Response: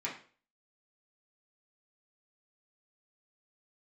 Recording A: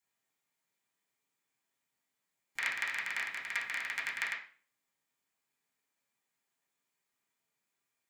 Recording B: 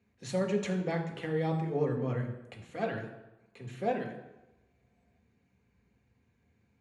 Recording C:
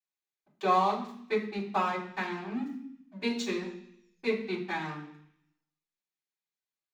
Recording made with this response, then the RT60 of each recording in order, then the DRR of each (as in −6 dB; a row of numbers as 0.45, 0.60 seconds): A; 0.40, 1.0, 0.65 seconds; −7.0, 2.0, −10.5 decibels